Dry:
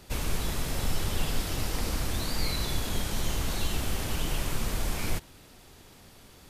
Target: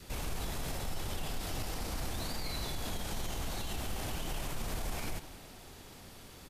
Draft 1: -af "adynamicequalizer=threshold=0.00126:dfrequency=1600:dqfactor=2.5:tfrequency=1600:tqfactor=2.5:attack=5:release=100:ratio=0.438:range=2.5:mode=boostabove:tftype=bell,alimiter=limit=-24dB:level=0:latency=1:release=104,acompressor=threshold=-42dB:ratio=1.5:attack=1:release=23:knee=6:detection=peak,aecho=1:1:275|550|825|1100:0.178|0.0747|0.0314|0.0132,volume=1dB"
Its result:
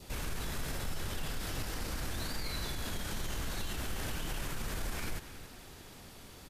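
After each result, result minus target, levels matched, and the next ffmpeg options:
echo 110 ms late; 2,000 Hz band +2.5 dB
-af "adynamicequalizer=threshold=0.00126:dfrequency=1600:dqfactor=2.5:tfrequency=1600:tqfactor=2.5:attack=5:release=100:ratio=0.438:range=2.5:mode=boostabove:tftype=bell,alimiter=limit=-24dB:level=0:latency=1:release=104,acompressor=threshold=-42dB:ratio=1.5:attack=1:release=23:knee=6:detection=peak,aecho=1:1:165|330|495|660:0.178|0.0747|0.0314|0.0132,volume=1dB"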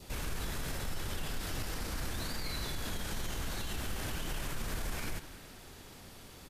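2,000 Hz band +2.5 dB
-af "adynamicequalizer=threshold=0.00126:dfrequency=740:dqfactor=2.5:tfrequency=740:tqfactor=2.5:attack=5:release=100:ratio=0.438:range=2.5:mode=boostabove:tftype=bell,alimiter=limit=-24dB:level=0:latency=1:release=104,acompressor=threshold=-42dB:ratio=1.5:attack=1:release=23:knee=6:detection=peak,aecho=1:1:165|330|495|660:0.178|0.0747|0.0314|0.0132,volume=1dB"

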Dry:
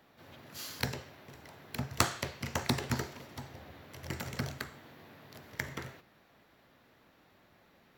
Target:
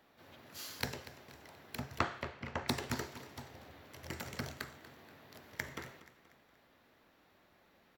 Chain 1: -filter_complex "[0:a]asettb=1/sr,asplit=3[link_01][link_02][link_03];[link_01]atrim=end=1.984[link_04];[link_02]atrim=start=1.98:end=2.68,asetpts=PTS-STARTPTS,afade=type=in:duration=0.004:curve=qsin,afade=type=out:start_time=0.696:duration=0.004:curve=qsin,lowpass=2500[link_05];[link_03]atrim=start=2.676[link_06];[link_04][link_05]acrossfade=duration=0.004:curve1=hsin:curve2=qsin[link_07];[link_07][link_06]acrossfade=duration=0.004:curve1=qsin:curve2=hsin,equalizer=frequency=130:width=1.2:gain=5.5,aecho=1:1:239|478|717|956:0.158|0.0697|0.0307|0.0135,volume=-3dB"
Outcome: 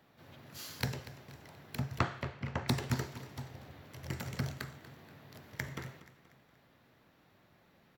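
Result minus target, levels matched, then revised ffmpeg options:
125 Hz band +6.0 dB
-filter_complex "[0:a]asettb=1/sr,asplit=3[link_01][link_02][link_03];[link_01]atrim=end=1.984[link_04];[link_02]atrim=start=1.98:end=2.68,asetpts=PTS-STARTPTS,afade=type=in:duration=0.004:curve=qsin,afade=type=out:start_time=0.696:duration=0.004:curve=qsin,lowpass=2500[link_05];[link_03]atrim=start=2.676[link_06];[link_04][link_05]acrossfade=duration=0.004:curve1=hsin:curve2=qsin[link_07];[link_07][link_06]acrossfade=duration=0.004:curve1=qsin:curve2=hsin,equalizer=frequency=130:width=1.2:gain=-5,aecho=1:1:239|478|717|956:0.158|0.0697|0.0307|0.0135,volume=-3dB"

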